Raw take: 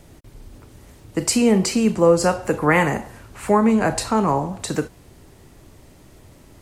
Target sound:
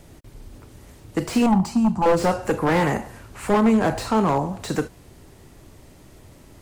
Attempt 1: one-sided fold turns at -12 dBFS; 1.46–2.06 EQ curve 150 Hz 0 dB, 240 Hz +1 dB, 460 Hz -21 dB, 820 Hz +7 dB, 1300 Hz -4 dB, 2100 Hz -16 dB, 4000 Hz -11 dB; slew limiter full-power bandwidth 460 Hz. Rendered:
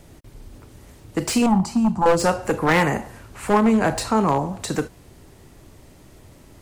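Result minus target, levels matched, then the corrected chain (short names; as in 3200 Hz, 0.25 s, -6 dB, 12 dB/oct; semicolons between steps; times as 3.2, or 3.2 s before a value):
slew limiter: distortion -10 dB
one-sided fold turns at -12 dBFS; 1.46–2.06 EQ curve 150 Hz 0 dB, 240 Hz +1 dB, 460 Hz -21 dB, 820 Hz +7 dB, 1300 Hz -4 dB, 2100 Hz -16 dB, 4000 Hz -11 dB; slew limiter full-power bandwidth 132 Hz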